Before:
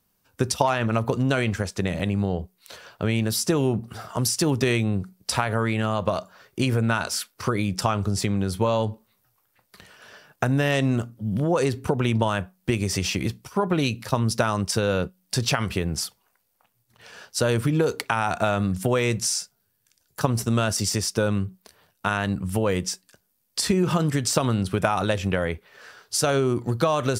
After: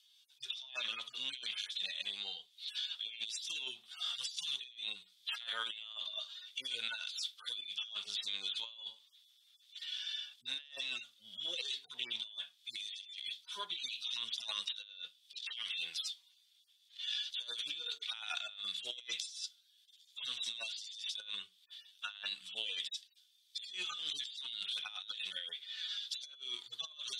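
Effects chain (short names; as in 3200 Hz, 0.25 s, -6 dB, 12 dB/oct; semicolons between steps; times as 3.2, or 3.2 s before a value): median-filter separation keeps harmonic; ladder band-pass 3600 Hz, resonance 85%; negative-ratio compressor -58 dBFS, ratio -1; gain +14 dB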